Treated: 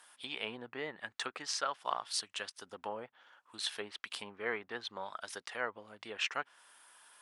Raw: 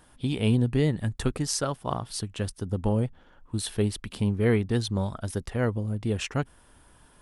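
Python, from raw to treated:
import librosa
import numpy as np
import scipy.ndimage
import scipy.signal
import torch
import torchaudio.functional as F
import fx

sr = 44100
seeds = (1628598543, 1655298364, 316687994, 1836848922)

y = fx.env_lowpass_down(x, sr, base_hz=1700.0, full_db=-21.0)
y = scipy.signal.sosfilt(scipy.signal.butter(2, 1100.0, 'highpass', fs=sr, output='sos'), y)
y = y * 10.0 ** (1.5 / 20.0)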